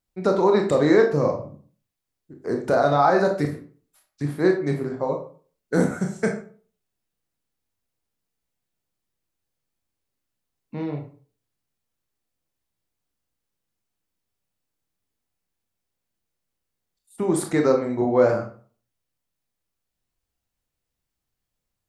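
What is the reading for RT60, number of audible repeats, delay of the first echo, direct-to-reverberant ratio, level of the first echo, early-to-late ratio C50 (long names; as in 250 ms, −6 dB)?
0.40 s, no echo audible, no echo audible, 2.5 dB, no echo audible, 8.0 dB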